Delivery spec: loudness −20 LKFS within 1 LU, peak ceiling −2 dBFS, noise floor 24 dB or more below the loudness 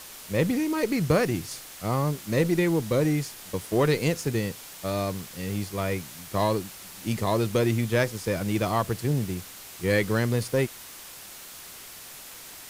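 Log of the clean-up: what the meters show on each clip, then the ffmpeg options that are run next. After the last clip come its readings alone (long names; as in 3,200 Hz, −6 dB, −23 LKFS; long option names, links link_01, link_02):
background noise floor −44 dBFS; target noise floor −51 dBFS; integrated loudness −27.0 LKFS; sample peak −9.0 dBFS; target loudness −20.0 LKFS
→ -af "afftdn=noise_reduction=7:noise_floor=-44"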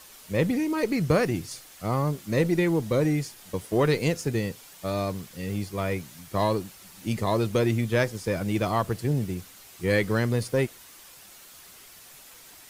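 background noise floor −49 dBFS; target noise floor −51 dBFS
→ -af "afftdn=noise_reduction=6:noise_floor=-49"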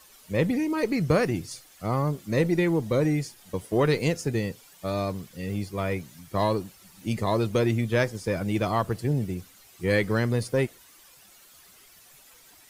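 background noise floor −54 dBFS; integrated loudness −27.0 LKFS; sample peak −9.5 dBFS; target loudness −20.0 LKFS
→ -af "volume=7dB"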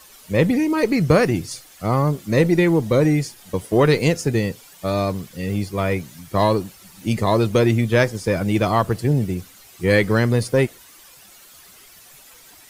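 integrated loudness −20.0 LKFS; sample peak −2.5 dBFS; background noise floor −47 dBFS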